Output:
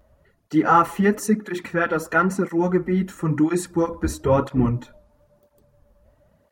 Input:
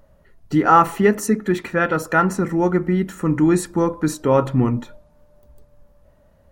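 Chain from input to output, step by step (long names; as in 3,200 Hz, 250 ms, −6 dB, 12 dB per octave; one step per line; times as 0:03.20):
0:03.91–0:04.72: sub-octave generator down 2 octaves, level −4 dB
through-zero flanger with one copy inverted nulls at 1 Hz, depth 7.9 ms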